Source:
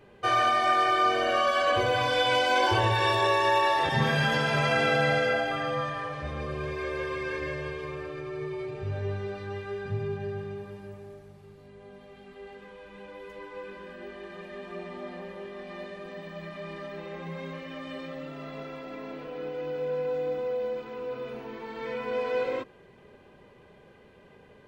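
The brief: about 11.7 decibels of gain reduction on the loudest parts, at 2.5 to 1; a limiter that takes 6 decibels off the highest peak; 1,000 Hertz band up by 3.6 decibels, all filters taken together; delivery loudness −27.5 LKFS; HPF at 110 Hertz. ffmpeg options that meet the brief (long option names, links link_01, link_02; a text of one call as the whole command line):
ffmpeg -i in.wav -af "highpass=110,equalizer=frequency=1000:width_type=o:gain=4.5,acompressor=threshold=-36dB:ratio=2.5,volume=10dB,alimiter=limit=-17.5dB:level=0:latency=1" out.wav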